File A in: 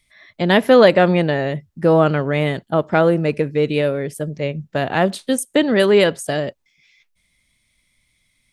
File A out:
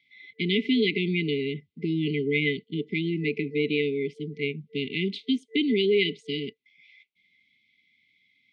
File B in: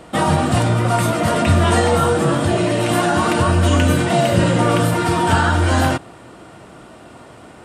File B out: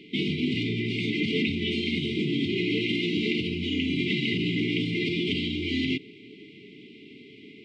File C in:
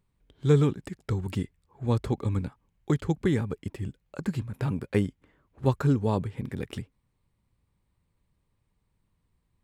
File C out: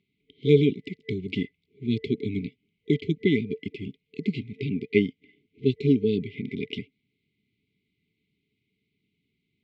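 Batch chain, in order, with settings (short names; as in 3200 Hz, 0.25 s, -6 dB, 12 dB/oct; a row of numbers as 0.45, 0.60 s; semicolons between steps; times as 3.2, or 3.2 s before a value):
FFT band-reject 450–2000 Hz; limiter -12.5 dBFS; speaker cabinet 330–3300 Hz, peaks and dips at 350 Hz -9 dB, 690 Hz -10 dB, 1100 Hz -9 dB, 1600 Hz +3 dB, 2600 Hz -4 dB; match loudness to -27 LUFS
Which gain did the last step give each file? +3.5, +4.5, +12.5 dB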